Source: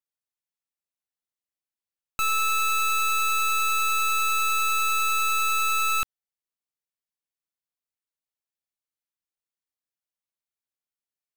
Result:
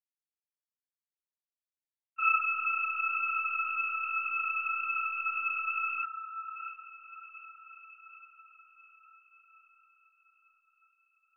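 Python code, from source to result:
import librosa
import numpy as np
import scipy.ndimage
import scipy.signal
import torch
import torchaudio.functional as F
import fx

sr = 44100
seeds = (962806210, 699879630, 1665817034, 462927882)

y = fx.sine_speech(x, sr)
y = fx.env_lowpass_down(y, sr, base_hz=2100.0, full_db=-25.0)
y = fx.peak_eq(y, sr, hz=1700.0, db=12.5, octaves=0.91)
y = fx.echo_diffused(y, sr, ms=635, feedback_pct=58, wet_db=-15.0)
y = fx.lpc_monotone(y, sr, seeds[0], pitch_hz=270.0, order=10)
y = fx.ensemble(y, sr)
y = y * 10.0 ** (-3.0 / 20.0)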